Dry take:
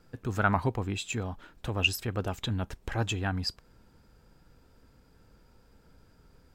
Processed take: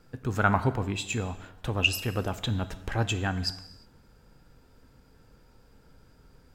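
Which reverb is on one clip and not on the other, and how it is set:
reverb whose tail is shaped and stops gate 380 ms falling, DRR 11 dB
level +2 dB

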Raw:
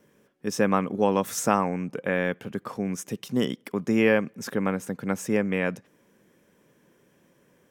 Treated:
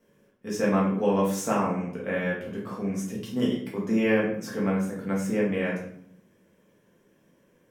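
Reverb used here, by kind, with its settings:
rectangular room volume 120 cubic metres, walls mixed, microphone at 1.6 metres
level −9 dB

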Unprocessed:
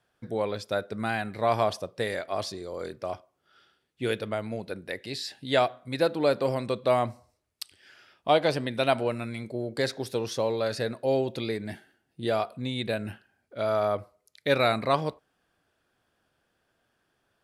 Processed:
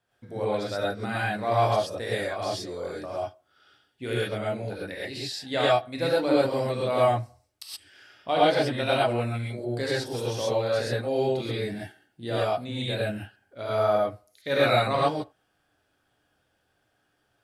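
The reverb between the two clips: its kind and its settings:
reverb whose tail is shaped and stops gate 150 ms rising, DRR −7 dB
level −6 dB

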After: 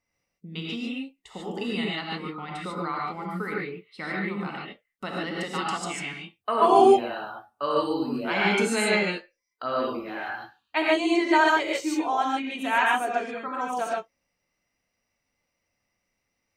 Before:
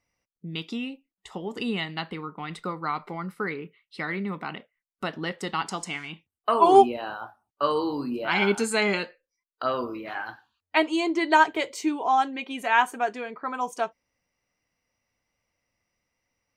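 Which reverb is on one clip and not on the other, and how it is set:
reverb whose tail is shaped and stops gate 170 ms rising, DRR −4 dB
level −4.5 dB

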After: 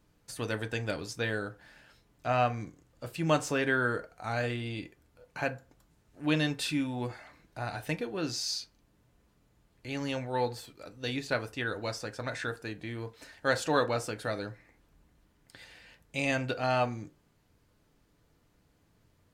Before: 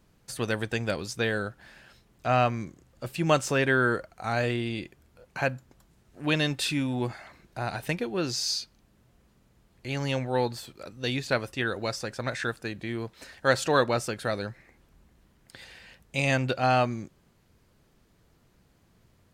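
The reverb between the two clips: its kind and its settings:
feedback delay network reverb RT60 0.31 s, low-frequency decay 0.75×, high-frequency decay 0.55×, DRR 7 dB
level −5 dB

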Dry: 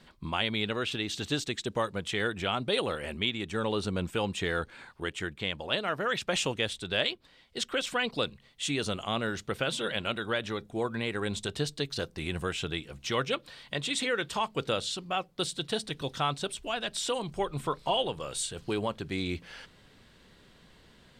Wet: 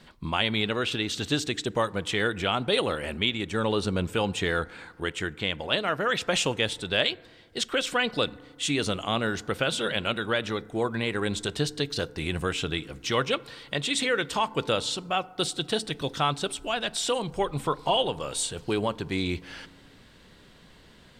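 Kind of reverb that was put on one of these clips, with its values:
feedback delay network reverb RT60 1.7 s, low-frequency decay 1.3×, high-frequency decay 0.3×, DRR 19.5 dB
level +4 dB

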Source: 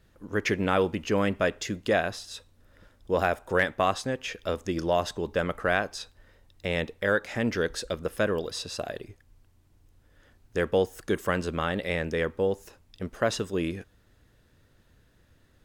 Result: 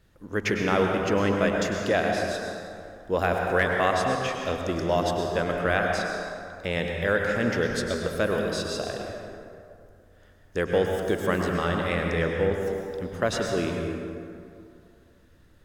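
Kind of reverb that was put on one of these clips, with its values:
dense smooth reverb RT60 2.5 s, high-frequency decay 0.5×, pre-delay 90 ms, DRR 1 dB

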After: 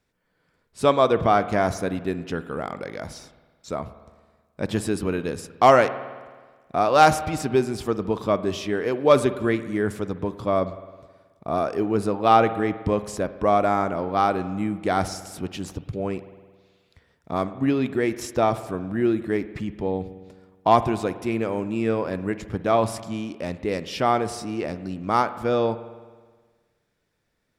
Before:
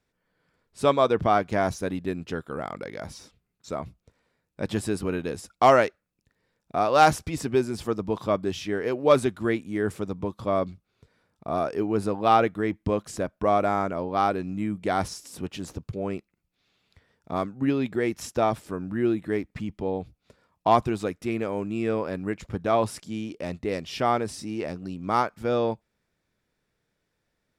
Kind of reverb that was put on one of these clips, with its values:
spring reverb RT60 1.5 s, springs 53 ms, chirp 65 ms, DRR 13 dB
level +2.5 dB

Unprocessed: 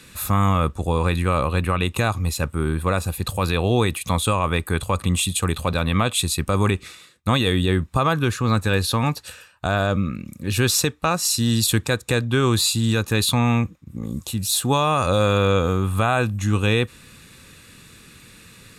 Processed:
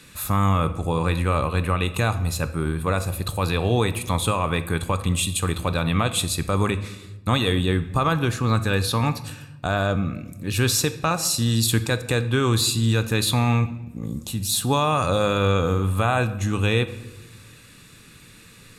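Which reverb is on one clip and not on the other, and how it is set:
rectangular room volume 440 cubic metres, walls mixed, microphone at 0.38 metres
level −2 dB

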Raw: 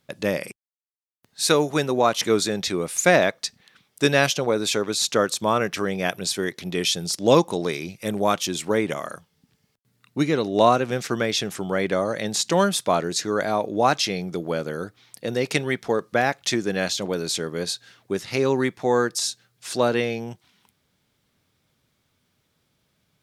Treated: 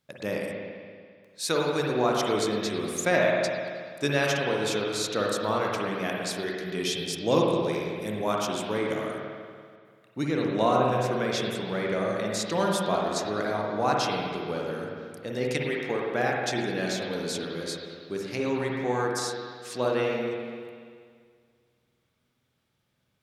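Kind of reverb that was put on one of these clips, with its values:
spring reverb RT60 2 s, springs 48/56 ms, chirp 60 ms, DRR −2 dB
level −8.5 dB

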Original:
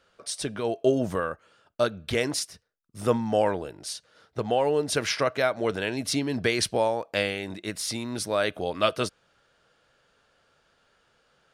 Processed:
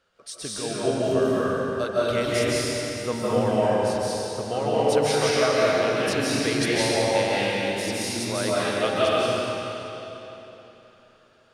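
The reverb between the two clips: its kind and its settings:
comb and all-pass reverb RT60 3.5 s, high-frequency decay 0.9×, pre-delay 115 ms, DRR −8.5 dB
level −5 dB

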